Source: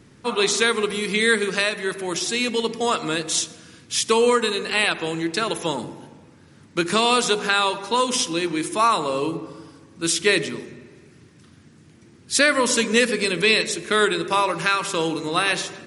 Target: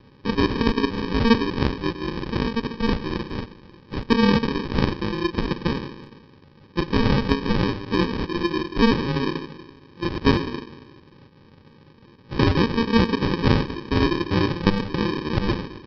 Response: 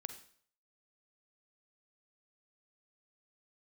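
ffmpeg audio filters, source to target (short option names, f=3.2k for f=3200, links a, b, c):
-af "aresample=11025,acrusher=samples=16:mix=1:aa=0.000001,aresample=44100" -ar 44100 -c:a aac -b:a 160k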